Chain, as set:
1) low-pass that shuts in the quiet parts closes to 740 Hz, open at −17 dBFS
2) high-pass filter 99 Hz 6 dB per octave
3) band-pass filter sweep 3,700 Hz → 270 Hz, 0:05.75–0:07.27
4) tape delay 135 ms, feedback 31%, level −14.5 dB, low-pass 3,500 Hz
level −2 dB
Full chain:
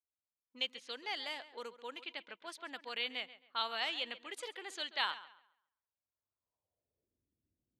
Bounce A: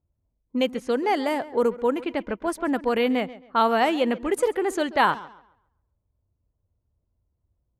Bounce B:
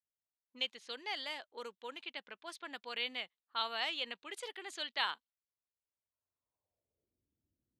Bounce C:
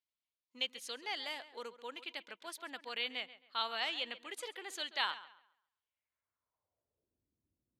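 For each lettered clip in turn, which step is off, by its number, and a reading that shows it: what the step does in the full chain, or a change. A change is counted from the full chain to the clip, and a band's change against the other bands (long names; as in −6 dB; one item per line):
3, 250 Hz band +17.0 dB
4, echo-to-direct ratio −25.0 dB to none audible
1, 8 kHz band +4.0 dB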